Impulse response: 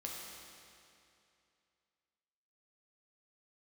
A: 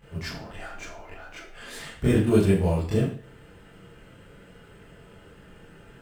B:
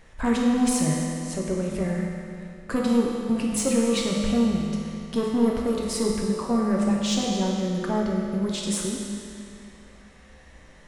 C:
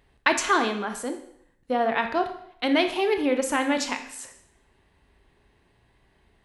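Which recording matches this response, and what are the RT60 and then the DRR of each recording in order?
B; 0.45 s, 2.6 s, 0.70 s; -10.0 dB, -3.0 dB, 6.5 dB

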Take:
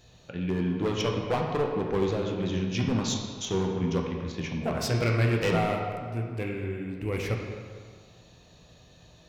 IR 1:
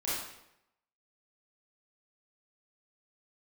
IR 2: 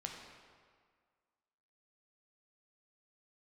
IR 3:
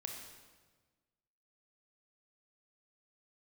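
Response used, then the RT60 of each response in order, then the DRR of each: 2; 0.80 s, 1.8 s, 1.4 s; -9.5 dB, 0.5 dB, 1.5 dB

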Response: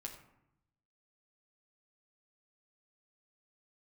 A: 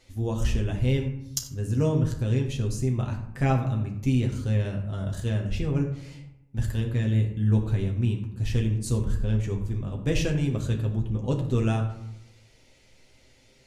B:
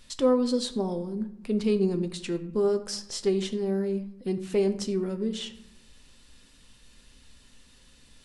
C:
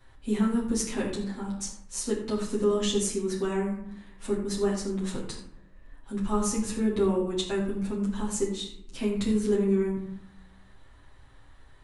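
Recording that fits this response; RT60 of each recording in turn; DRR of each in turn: A; 0.80 s, 0.80 s, 0.80 s; 0.5 dB, 7.5 dB, -7.0 dB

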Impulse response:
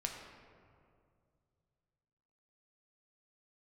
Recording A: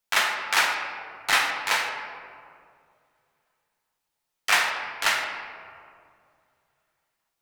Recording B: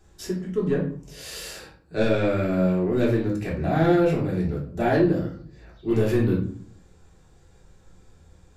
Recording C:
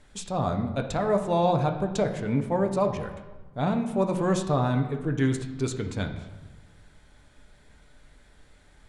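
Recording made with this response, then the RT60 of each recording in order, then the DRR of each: A; 2.3 s, 0.50 s, 1.3 s; 1.0 dB, -4.5 dB, 4.5 dB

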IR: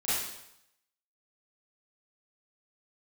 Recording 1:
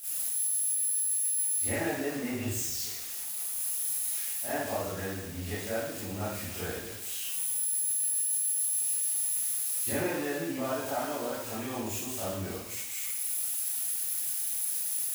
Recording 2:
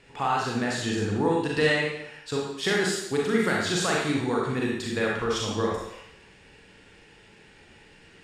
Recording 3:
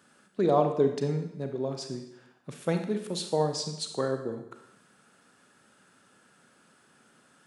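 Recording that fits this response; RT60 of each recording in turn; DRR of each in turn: 1; 0.80 s, 0.80 s, 0.80 s; -13.5 dB, -3.5 dB, 5.5 dB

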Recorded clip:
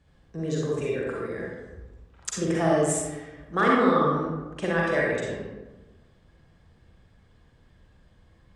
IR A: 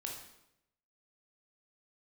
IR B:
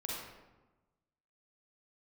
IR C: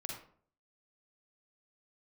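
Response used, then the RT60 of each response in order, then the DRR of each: B; 0.85 s, 1.1 s, 0.55 s; -0.5 dB, -4.5 dB, -0.5 dB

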